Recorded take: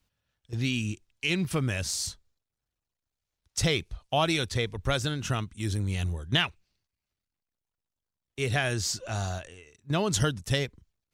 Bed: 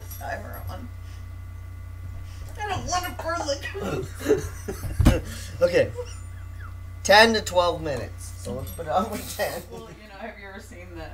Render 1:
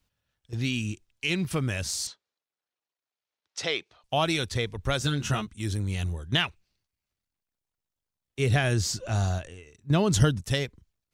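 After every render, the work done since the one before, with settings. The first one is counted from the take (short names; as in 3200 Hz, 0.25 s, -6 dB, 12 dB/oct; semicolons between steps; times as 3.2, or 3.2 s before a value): 2.07–4.04 BPF 410–4900 Hz; 4.99–5.47 doubler 14 ms -2.5 dB; 8.39–10.41 low shelf 390 Hz +7 dB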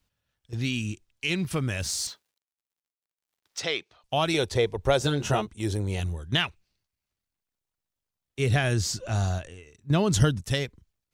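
1.8–3.6 G.711 law mismatch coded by mu; 4.34–6 band shelf 570 Hz +9 dB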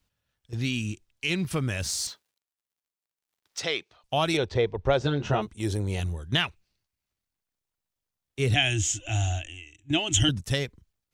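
4.37–5.42 air absorption 170 m; 8.54–10.29 EQ curve 110 Hz 0 dB, 200 Hz -21 dB, 310 Hz +7 dB, 460 Hz -21 dB, 730 Hz +1 dB, 1100 Hz -13 dB, 3100 Hz +14 dB, 4500 Hz -16 dB, 6900 Hz +9 dB, 11000 Hz -11 dB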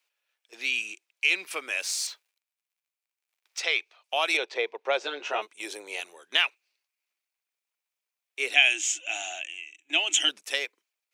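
Bessel high-pass 630 Hz, order 6; bell 2400 Hz +9 dB 0.4 oct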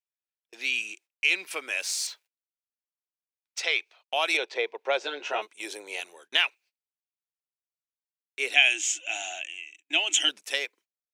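notch 1200 Hz, Q 14; gate -54 dBFS, range -26 dB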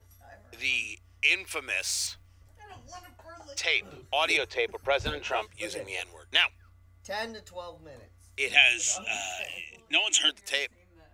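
add bed -20 dB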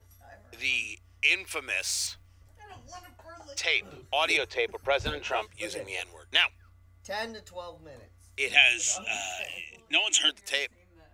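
nothing audible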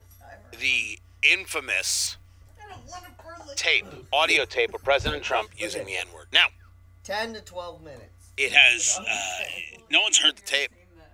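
gain +5 dB; limiter -1 dBFS, peak gain reduction 1.5 dB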